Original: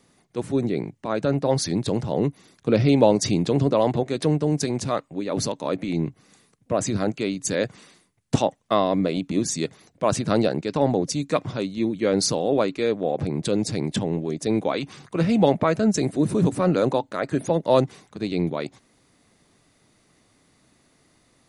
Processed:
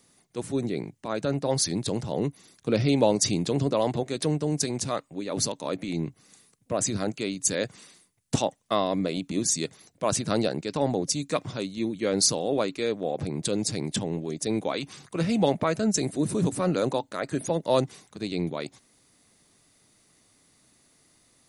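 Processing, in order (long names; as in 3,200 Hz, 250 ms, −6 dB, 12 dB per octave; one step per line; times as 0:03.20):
high-shelf EQ 4,500 Hz +11.5 dB
level −5 dB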